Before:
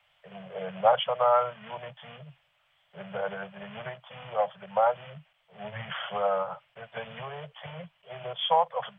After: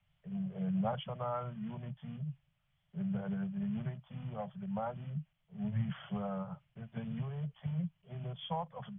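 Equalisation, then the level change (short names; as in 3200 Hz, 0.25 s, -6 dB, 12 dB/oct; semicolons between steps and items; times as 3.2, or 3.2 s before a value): EQ curve 130 Hz 0 dB, 290 Hz +6 dB, 490 Hz -23 dB; +7.5 dB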